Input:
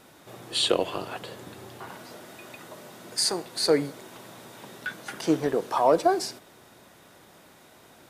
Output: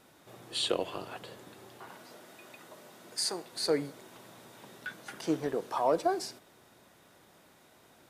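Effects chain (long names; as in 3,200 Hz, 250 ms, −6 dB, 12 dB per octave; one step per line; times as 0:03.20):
0:01.39–0:03.53: high-pass filter 170 Hz 6 dB per octave
level −7 dB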